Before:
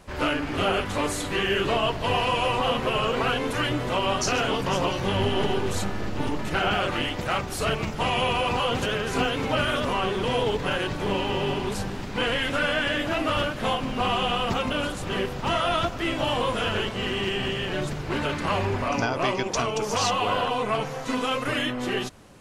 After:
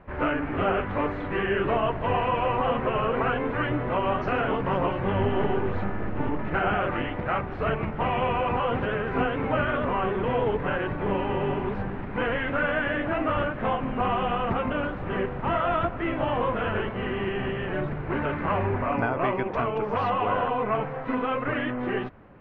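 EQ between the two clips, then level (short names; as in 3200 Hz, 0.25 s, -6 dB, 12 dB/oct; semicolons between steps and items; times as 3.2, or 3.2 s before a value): LPF 2100 Hz 24 dB/oct; 0.0 dB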